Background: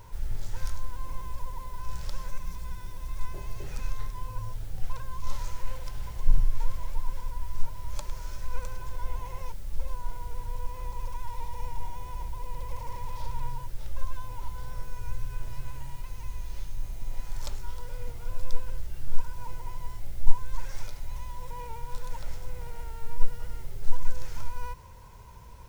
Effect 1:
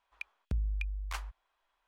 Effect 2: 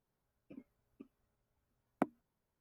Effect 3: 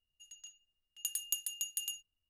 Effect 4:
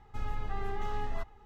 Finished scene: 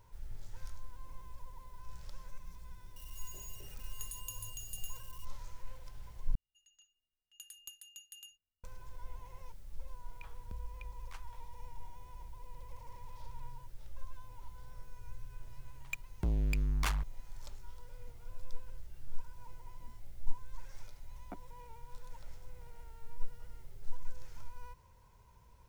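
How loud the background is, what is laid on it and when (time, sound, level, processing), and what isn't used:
background -13.5 dB
2.96 add 3 -12 dB + switching spikes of -33 dBFS
6.35 replace with 3 -7.5 dB + high shelf 3500 Hz -9 dB
10 add 1 -13.5 dB + sustainer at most 150 dB/s
15.72 add 1 -4.5 dB + sample leveller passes 5
19.3 add 2 -10.5 dB + ensemble effect
not used: 4

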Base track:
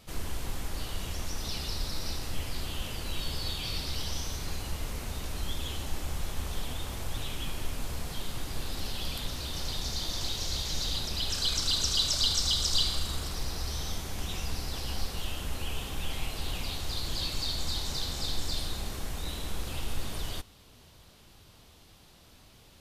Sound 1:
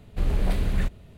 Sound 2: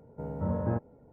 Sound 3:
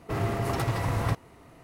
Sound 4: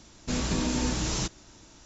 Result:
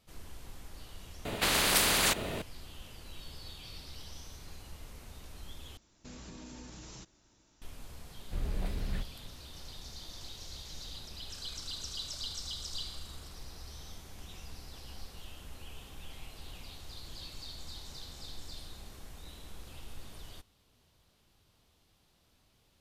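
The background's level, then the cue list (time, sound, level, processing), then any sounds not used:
base track -13 dB
1.25 replace with 1 -0.5 dB + spectral compressor 10:1
5.77 replace with 4 -14.5 dB + compressor 3:1, threshold -31 dBFS
8.15 add 1 -11 dB
not used: 2, 3

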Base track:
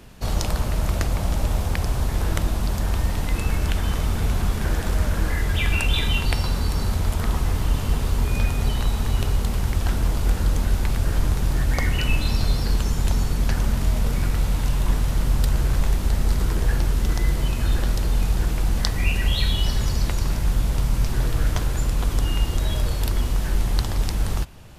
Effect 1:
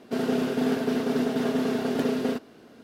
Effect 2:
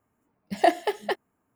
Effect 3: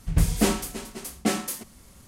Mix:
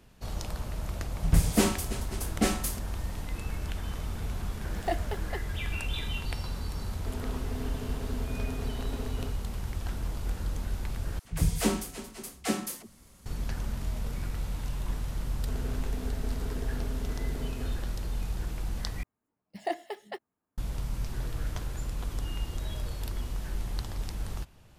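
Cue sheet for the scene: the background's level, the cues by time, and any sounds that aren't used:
base track -12 dB
1.16 add 3 -2 dB
4.24 add 2 -11 dB
6.94 add 1 -15 dB
11.19 replace with 3 -5 dB + dispersion lows, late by 61 ms, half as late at 410 Hz
15.36 add 1 -17 dB
19.03 replace with 2 -12 dB

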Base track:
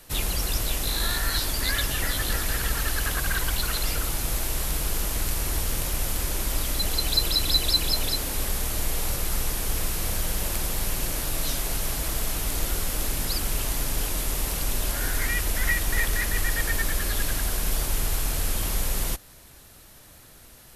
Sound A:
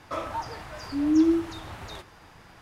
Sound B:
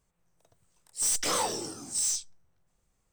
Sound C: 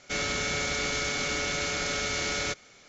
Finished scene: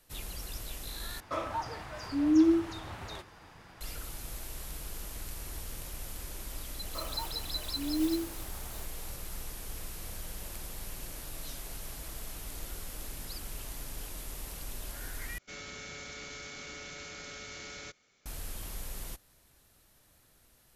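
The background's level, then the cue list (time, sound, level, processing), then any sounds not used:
base track -14.5 dB
1.2 replace with A -2.5 dB
6.84 add A -10 dB + clock jitter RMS 0.054 ms
15.38 replace with C -14.5 dB + bell 690 Hz -2.5 dB
not used: B

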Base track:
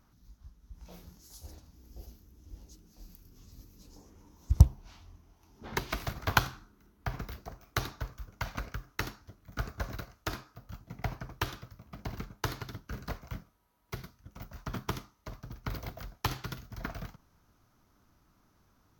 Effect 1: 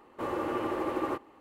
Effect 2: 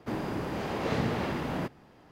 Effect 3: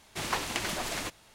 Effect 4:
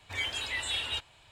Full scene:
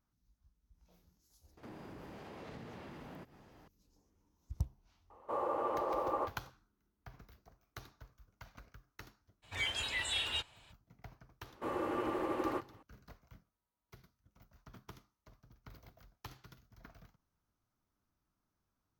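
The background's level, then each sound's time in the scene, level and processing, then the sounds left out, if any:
base track -18 dB
1.57 add 2 -4.5 dB + compressor 3:1, threshold -47 dBFS
5.1 add 1 -13 dB + band shelf 750 Hz +13 dB
9.42 add 4 -3 dB, fades 0.02 s
11.43 add 1 -4.5 dB
not used: 3

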